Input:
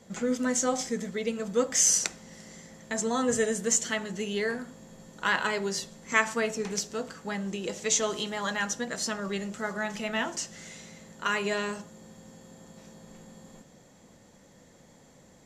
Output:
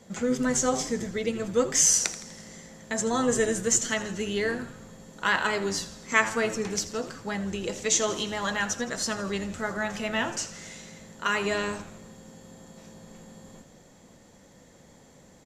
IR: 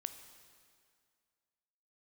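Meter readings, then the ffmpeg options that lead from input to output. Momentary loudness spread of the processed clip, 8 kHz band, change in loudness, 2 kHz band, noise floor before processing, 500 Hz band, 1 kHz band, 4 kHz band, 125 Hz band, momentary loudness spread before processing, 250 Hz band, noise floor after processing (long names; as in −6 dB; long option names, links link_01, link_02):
15 LU, +2.0 dB, +2.0 dB, +2.0 dB, −57 dBFS, +2.0 dB, +2.0 dB, +2.0 dB, +3.5 dB, 14 LU, +2.0 dB, −55 dBFS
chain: -filter_complex "[0:a]asplit=7[link_01][link_02][link_03][link_04][link_05][link_06][link_07];[link_02]adelay=82,afreqshift=-110,volume=-15dB[link_08];[link_03]adelay=164,afreqshift=-220,volume=-19.7dB[link_09];[link_04]adelay=246,afreqshift=-330,volume=-24.5dB[link_10];[link_05]adelay=328,afreqshift=-440,volume=-29.2dB[link_11];[link_06]adelay=410,afreqshift=-550,volume=-33.9dB[link_12];[link_07]adelay=492,afreqshift=-660,volume=-38.7dB[link_13];[link_01][link_08][link_09][link_10][link_11][link_12][link_13]amix=inputs=7:normalize=0,asplit=2[link_14][link_15];[1:a]atrim=start_sample=2205[link_16];[link_15][link_16]afir=irnorm=-1:irlink=0,volume=-10dB[link_17];[link_14][link_17]amix=inputs=2:normalize=0"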